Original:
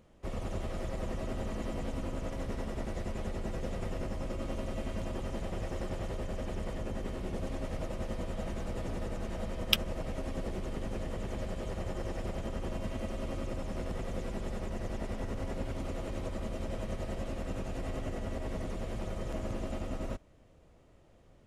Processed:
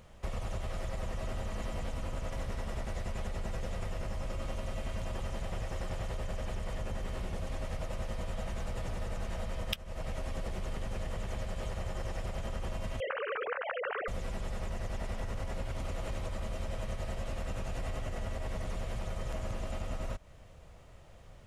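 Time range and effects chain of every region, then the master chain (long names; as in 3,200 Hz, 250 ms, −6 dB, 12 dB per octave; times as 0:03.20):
0:13.00–0:14.08: three sine waves on the formant tracks + parametric band 1,500 Hz +10.5 dB 0.75 octaves + envelope flattener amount 50%
whole clip: parametric band 300 Hz −11.5 dB 1.3 octaves; downward compressor 16 to 1, threshold −41 dBFS; level +9 dB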